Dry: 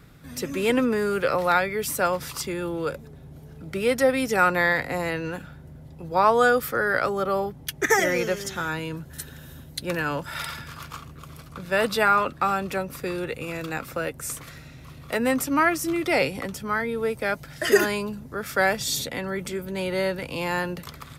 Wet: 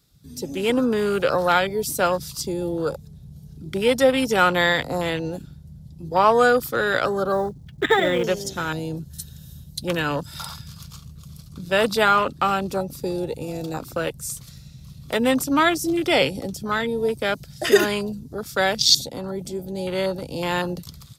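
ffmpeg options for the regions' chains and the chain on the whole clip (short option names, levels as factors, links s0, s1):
-filter_complex "[0:a]asettb=1/sr,asplit=3[s0][s1][s2];[s0]atrim=end=7.324[s3];[s1]atrim=start=7.32:end=8.24,asetpts=PTS-STARTPTS,afade=t=in:d=0.004:c=qsin,afade=t=out:st=0.916:d=0.004:c=qsin,lowpass=f=2100:w=0.5412,lowpass=f=2100:w=1.3066,acrusher=bits=7:mode=log:mix=0:aa=0.000001[s4];[s2]atrim=start=8.236[s5];[s3][s4]acrossfade=d=0.004:c1=hsin:c2=qsin[s6];[s6][s5]acrossfade=d=0.004:c1=qsin:c2=hsin,afwtdn=0.0316,highshelf=f=3000:t=q:w=1.5:g=13,dynaudnorm=f=570:g=3:m=1.58"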